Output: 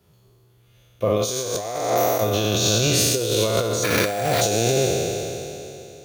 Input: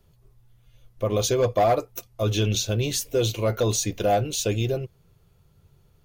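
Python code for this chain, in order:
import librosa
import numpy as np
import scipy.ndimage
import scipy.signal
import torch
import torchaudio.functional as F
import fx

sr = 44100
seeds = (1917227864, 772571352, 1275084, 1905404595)

y = fx.spec_trails(x, sr, decay_s=2.96)
y = fx.high_shelf(y, sr, hz=3600.0, db=6.0, at=(1.25, 1.9))
y = fx.sample_hold(y, sr, seeds[0], rate_hz=8200.0, jitter_pct=0, at=(3.83, 4.4), fade=0.02)
y = fx.over_compress(y, sr, threshold_db=-20.0, ratio=-0.5)
y = scipy.signal.sosfilt(scipy.signal.butter(2, 98.0, 'highpass', fs=sr, output='sos'), y)
y = y + 10.0 ** (-23.5 / 20.0) * np.pad(y, (int(443 * sr / 1000.0), 0))[:len(y)]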